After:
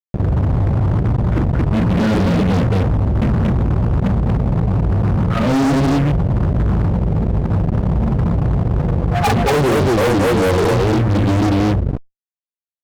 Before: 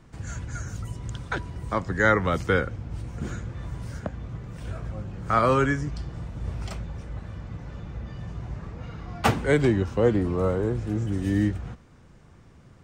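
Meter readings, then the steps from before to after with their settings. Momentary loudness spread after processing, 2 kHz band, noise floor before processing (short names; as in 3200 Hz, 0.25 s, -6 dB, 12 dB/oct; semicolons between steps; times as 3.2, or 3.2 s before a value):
3 LU, +3.0 dB, -52 dBFS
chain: loudest bins only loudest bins 8; synth low-pass 1700 Hz, resonance Q 3.6; low-pass sweep 250 Hz -> 1200 Hz, 8.28–9.58; loudspeakers at several distances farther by 14 m -4 dB, 79 m -1 dB; fuzz box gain 34 dB, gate -38 dBFS; fast leveller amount 50%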